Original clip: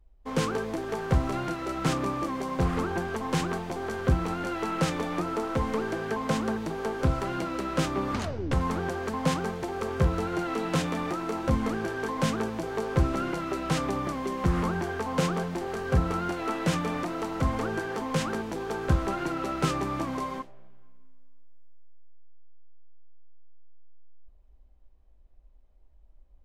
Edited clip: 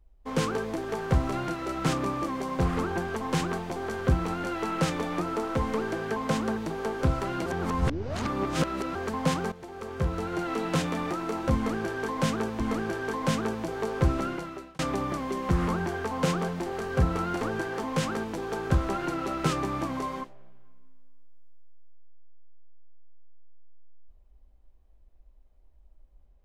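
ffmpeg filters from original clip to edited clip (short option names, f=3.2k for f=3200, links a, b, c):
-filter_complex "[0:a]asplit=7[a][b][c][d][e][f][g];[a]atrim=end=7.462[h];[b]atrim=start=7.458:end=8.952,asetpts=PTS-STARTPTS,areverse[i];[c]atrim=start=8.948:end=9.52,asetpts=PTS-STARTPTS,afade=t=out:st=0.568:d=0.004:c=hsin:silence=0.223872[j];[d]atrim=start=9.52:end=12.602,asetpts=PTS-STARTPTS,afade=t=in:d=1.01:silence=0.223872[k];[e]atrim=start=11.548:end=13.74,asetpts=PTS-STARTPTS,afade=t=out:st=1.582:d=0.61[l];[f]atrim=start=13.74:end=16.362,asetpts=PTS-STARTPTS,afade=t=in:d=0.004:c=hsin[m];[g]atrim=start=17.588[n];[h][i]acrossfade=d=0.004:c1=hsin:c2=hsin[o];[j][k]concat=n=2:v=0:a=1[p];[o][p]acrossfade=d=0.004:c1=hsin:c2=hsin[q];[l][m]concat=n=2:v=0:a=1[r];[q][r]acrossfade=d=0.004:c1=hsin:c2=hsin[s];[s][n]acrossfade=d=0.004:c1=hsin:c2=hsin"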